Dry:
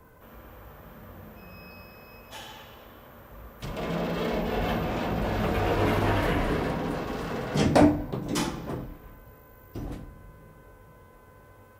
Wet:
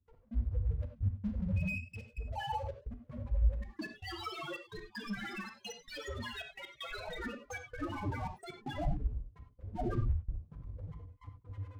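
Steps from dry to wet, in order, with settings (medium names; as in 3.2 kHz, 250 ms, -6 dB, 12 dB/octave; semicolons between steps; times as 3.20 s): treble shelf 7.2 kHz -8 dB; waveshaping leveller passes 3; sine folder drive 8 dB, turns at -24 dBFS; loudest bins only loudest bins 2; crossover distortion -59.5 dBFS; rotary cabinet horn 7 Hz; trance gate ".x..xxxxxxx." 194 bpm -24 dB; reverberation, pre-delay 3 ms, DRR 5.5 dB; trim +8.5 dB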